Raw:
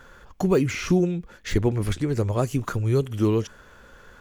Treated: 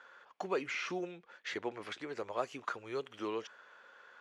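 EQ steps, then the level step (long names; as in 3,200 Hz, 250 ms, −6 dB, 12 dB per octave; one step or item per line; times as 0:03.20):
band-pass filter 660–3,800 Hz
−5.5 dB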